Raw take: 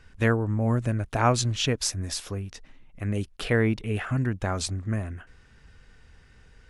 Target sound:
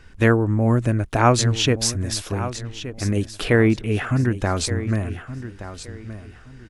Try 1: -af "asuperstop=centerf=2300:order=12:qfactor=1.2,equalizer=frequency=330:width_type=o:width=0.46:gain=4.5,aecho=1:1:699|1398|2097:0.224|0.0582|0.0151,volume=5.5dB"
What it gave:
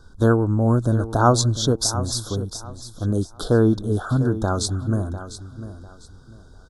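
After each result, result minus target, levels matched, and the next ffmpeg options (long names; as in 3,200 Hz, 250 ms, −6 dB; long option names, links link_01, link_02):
echo 473 ms early; 2,000 Hz band −8.0 dB
-af "asuperstop=centerf=2300:order=12:qfactor=1.2,equalizer=frequency=330:width_type=o:width=0.46:gain=4.5,aecho=1:1:1172|2344|3516:0.224|0.0582|0.0151,volume=5.5dB"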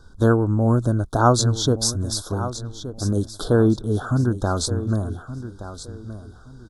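2,000 Hz band −8.0 dB
-af "equalizer=frequency=330:width_type=o:width=0.46:gain=4.5,aecho=1:1:1172|2344|3516:0.224|0.0582|0.0151,volume=5.5dB"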